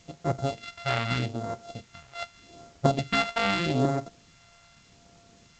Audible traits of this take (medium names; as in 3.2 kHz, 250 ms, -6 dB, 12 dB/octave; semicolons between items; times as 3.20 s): a buzz of ramps at a fixed pitch in blocks of 64 samples; phasing stages 2, 0.82 Hz, lowest notch 280–2800 Hz; a quantiser's noise floor 10-bit, dither triangular; G.722